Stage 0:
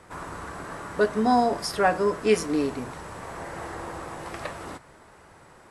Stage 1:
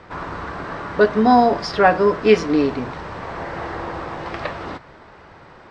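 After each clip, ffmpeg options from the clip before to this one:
-af "lowpass=f=4.8k:w=0.5412,lowpass=f=4.8k:w=1.3066,volume=7.5dB"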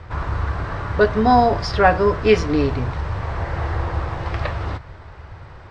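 -af "lowshelf=f=140:t=q:w=1.5:g=13.5"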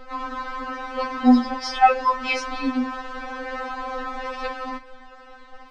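-af "afftfilt=real='re*3.46*eq(mod(b,12),0)':imag='im*3.46*eq(mod(b,12),0)':win_size=2048:overlap=0.75,volume=2dB"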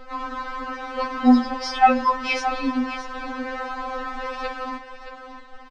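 -af "aecho=1:1:622:0.282"

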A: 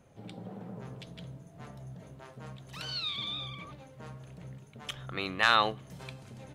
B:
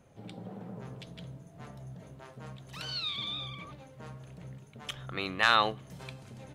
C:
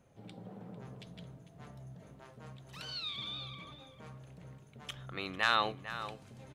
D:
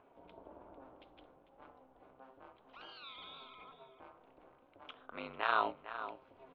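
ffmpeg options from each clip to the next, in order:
-af anull
-filter_complex "[0:a]asplit=2[a][b];[b]adelay=449,volume=-11dB,highshelf=f=4k:g=-10.1[c];[a][c]amix=inputs=2:normalize=0,volume=-5dB"
-af "acompressor=mode=upward:threshold=-51dB:ratio=2.5,highpass=380,equalizer=f=390:t=q:w=4:g=7,equalizer=f=550:t=q:w=4:g=3,equalizer=f=850:t=q:w=4:g=8,equalizer=f=1.3k:t=q:w=4:g=5,equalizer=f=1.8k:t=q:w=4:g=-8,lowpass=f=3k:w=0.5412,lowpass=f=3k:w=1.3066,aeval=exprs='val(0)*sin(2*PI*130*n/s)':c=same,volume=-2dB"

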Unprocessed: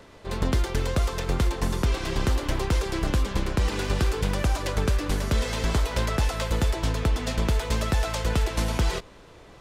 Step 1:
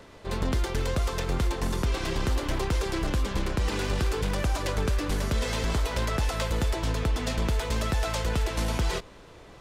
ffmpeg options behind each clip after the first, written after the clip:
-af "alimiter=limit=-19dB:level=0:latency=1:release=10"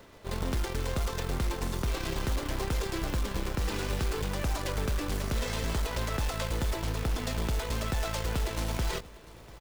-af "aeval=exprs='0.119*(cos(1*acos(clip(val(0)/0.119,-1,1)))-cos(1*PI/2))+0.00944*(cos(6*acos(clip(val(0)/0.119,-1,1)))-cos(6*PI/2))':c=same,aecho=1:1:693:0.0891,acrusher=bits=3:mode=log:mix=0:aa=0.000001,volume=-4dB"

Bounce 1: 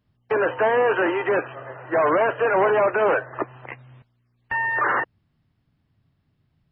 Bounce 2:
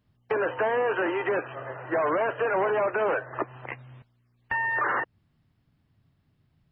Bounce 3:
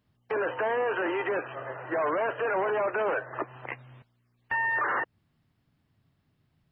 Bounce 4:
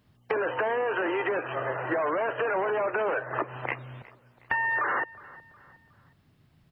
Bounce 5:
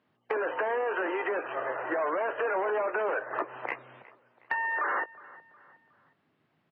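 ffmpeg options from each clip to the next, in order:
-af "acompressor=threshold=-27dB:ratio=2"
-af "alimiter=limit=-20.5dB:level=0:latency=1:release=18,lowshelf=f=150:g=-6"
-af "acompressor=threshold=-33dB:ratio=6,aecho=1:1:364|728|1092:0.0891|0.0365|0.015,volume=8dB"
-filter_complex "[0:a]volume=17dB,asoftclip=hard,volume=-17dB,highpass=310,lowpass=2.6k,asplit=2[a][b];[b]adelay=19,volume=-14dB[c];[a][c]amix=inputs=2:normalize=0,volume=-1.5dB"

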